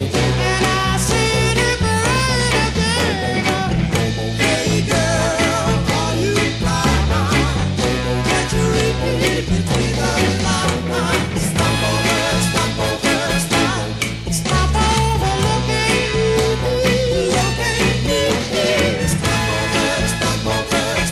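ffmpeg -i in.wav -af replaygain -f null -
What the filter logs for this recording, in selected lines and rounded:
track_gain = -0.8 dB
track_peak = 0.312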